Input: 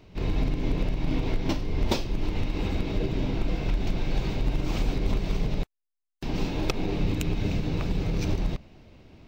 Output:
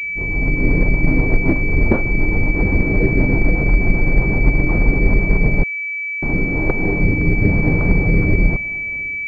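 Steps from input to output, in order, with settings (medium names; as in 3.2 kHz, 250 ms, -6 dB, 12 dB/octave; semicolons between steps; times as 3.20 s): rotary cabinet horn 8 Hz, later 1 Hz, at 5.64 s; level rider gain up to 12 dB; class-D stage that switches slowly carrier 2.3 kHz; trim +2 dB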